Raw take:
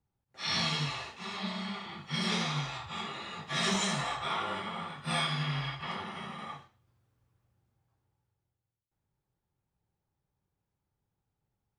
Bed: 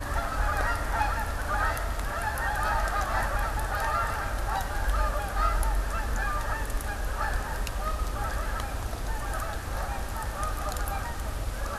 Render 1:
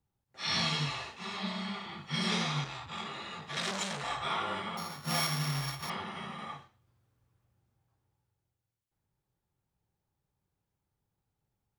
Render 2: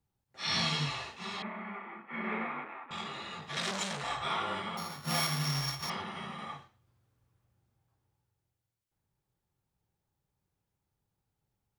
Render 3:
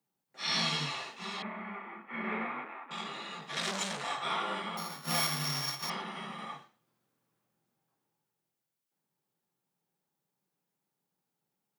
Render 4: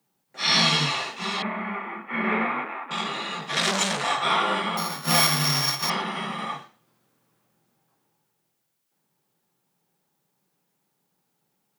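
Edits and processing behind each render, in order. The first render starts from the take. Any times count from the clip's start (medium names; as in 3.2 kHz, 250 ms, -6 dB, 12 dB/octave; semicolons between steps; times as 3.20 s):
2.64–4.10 s: transformer saturation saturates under 2.2 kHz; 4.77–5.90 s: sorted samples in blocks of 8 samples
1.42–2.91 s: Chebyshev band-pass 220–2300 Hz, order 4; 5.45–6.02 s: peaking EQ 5.7 kHz +6.5 dB 0.42 oct
steep high-pass 160 Hz 36 dB/octave; treble shelf 11 kHz +5 dB
trim +11 dB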